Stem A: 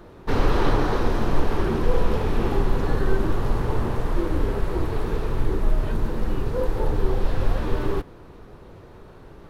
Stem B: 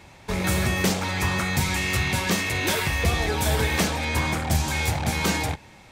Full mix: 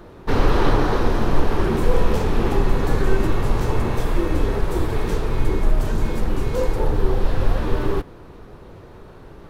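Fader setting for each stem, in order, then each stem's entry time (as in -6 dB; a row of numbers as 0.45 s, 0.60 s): +3.0 dB, -14.5 dB; 0.00 s, 1.30 s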